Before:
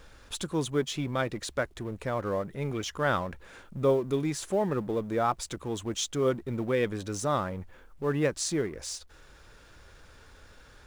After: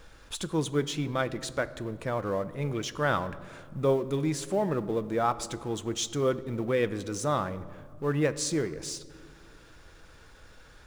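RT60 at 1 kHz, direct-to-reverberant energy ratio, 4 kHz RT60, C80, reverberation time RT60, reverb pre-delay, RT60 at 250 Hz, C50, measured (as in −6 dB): 1.8 s, 12.0 dB, 1.1 s, 17.0 dB, 2.0 s, 6 ms, 2.9 s, 16.0 dB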